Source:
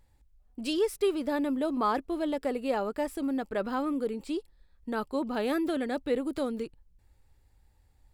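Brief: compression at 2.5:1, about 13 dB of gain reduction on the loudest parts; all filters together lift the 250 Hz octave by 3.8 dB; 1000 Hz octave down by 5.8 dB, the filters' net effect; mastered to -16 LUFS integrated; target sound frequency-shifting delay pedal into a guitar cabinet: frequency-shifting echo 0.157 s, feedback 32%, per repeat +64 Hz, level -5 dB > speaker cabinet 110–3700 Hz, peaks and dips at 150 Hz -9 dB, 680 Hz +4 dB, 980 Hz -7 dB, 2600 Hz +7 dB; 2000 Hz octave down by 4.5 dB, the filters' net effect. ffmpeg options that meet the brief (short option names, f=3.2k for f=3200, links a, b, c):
-filter_complex "[0:a]equalizer=f=250:t=o:g=5.5,equalizer=f=1k:t=o:g=-5.5,equalizer=f=2k:t=o:g=-6.5,acompressor=threshold=-43dB:ratio=2.5,asplit=5[a][b][c][d][e];[b]adelay=157,afreqshift=64,volume=-5dB[f];[c]adelay=314,afreqshift=128,volume=-14.9dB[g];[d]adelay=471,afreqshift=192,volume=-24.8dB[h];[e]adelay=628,afreqshift=256,volume=-34.7dB[i];[a][f][g][h][i]amix=inputs=5:normalize=0,highpass=110,equalizer=f=150:t=q:w=4:g=-9,equalizer=f=680:t=q:w=4:g=4,equalizer=f=980:t=q:w=4:g=-7,equalizer=f=2.6k:t=q:w=4:g=7,lowpass=f=3.7k:w=0.5412,lowpass=f=3.7k:w=1.3066,volume=23.5dB"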